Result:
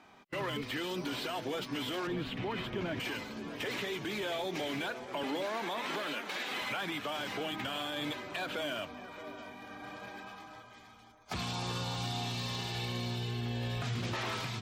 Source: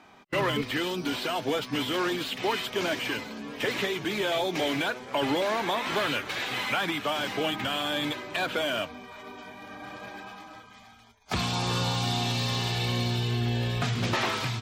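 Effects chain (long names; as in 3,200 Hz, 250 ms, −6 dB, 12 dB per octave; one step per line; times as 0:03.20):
0:02.07–0:03.00: bass and treble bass +14 dB, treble −14 dB
0:05.23–0:06.62: Butterworth high-pass 170 Hz 36 dB per octave
brickwall limiter −23.5 dBFS, peak gain reduction 8.5 dB
on a send: delay with a low-pass on its return 626 ms, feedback 31%, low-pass 1,500 Hz, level −12 dB
on the sum: level −4.5 dB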